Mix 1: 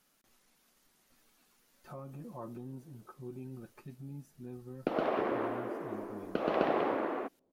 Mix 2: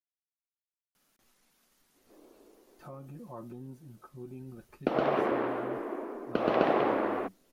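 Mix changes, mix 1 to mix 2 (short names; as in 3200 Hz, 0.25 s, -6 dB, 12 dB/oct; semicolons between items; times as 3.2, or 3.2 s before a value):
speech: entry +0.95 s; background +4.0 dB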